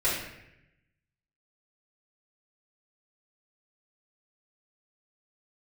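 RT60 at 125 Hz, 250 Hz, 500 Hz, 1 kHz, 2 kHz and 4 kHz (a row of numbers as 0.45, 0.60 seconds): 1.3, 1.1, 0.90, 0.80, 1.0, 0.70 seconds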